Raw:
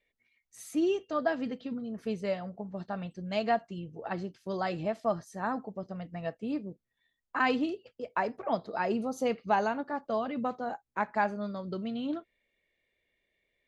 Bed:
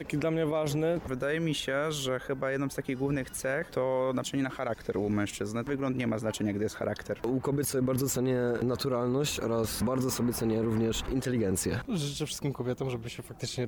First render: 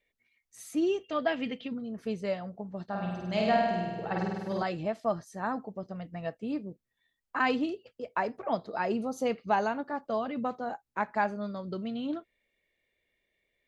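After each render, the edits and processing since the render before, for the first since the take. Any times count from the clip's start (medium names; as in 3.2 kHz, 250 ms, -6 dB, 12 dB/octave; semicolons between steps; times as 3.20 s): 1.04–1.68 s: high-order bell 2.6 kHz +10 dB 1 oct; 2.85–4.63 s: flutter echo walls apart 8.6 m, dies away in 1.4 s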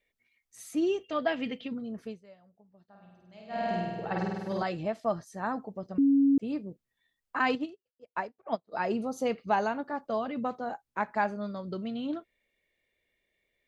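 1.96–3.73 s: dip -22 dB, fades 0.24 s; 5.98–6.38 s: bleep 277 Hz -19 dBFS; 7.55–8.72 s: upward expansion 2.5:1, over -48 dBFS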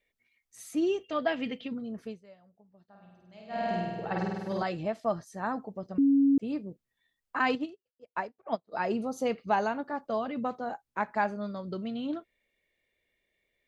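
no audible change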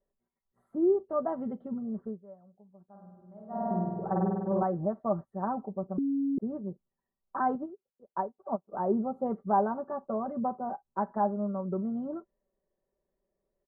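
inverse Chebyshev low-pass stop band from 2.3 kHz, stop band 40 dB; comb 5.2 ms, depth 67%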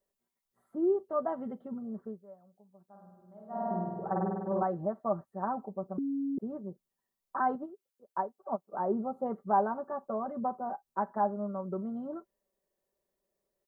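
tilt EQ +2 dB/octave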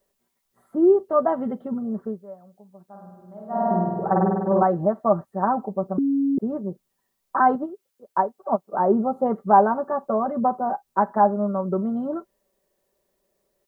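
trim +11.5 dB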